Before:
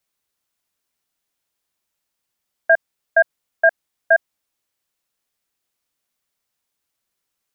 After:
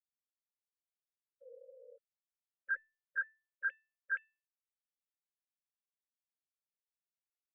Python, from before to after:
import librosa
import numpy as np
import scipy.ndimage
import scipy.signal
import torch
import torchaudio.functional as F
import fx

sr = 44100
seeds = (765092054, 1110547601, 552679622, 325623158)

y = fx.sine_speech(x, sr)
y = fx.spec_paint(y, sr, seeds[0], shape='noise', start_s=1.41, length_s=0.57, low_hz=450.0, high_hz=1100.0, level_db=-30.0)
y = fx.brickwall_bandstop(y, sr, low_hz=560.0, high_hz=1300.0)
y = fx.comb_fb(y, sr, f0_hz=890.0, decay_s=0.34, harmonics='all', damping=0.0, mix_pct=90)
y = y * librosa.db_to_amplitude(2.0)